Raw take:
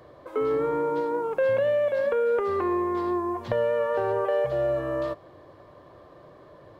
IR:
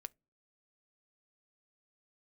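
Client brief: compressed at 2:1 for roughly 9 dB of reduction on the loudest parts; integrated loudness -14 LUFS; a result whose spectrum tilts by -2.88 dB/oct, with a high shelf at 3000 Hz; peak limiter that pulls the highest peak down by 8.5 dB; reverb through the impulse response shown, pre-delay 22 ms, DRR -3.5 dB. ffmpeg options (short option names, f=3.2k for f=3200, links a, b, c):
-filter_complex "[0:a]highshelf=f=3k:g=-4,acompressor=threshold=-38dB:ratio=2,alimiter=level_in=6dB:limit=-24dB:level=0:latency=1,volume=-6dB,asplit=2[a][b];[1:a]atrim=start_sample=2205,adelay=22[c];[b][c]afir=irnorm=-1:irlink=0,volume=8.5dB[d];[a][d]amix=inputs=2:normalize=0,volume=17.5dB"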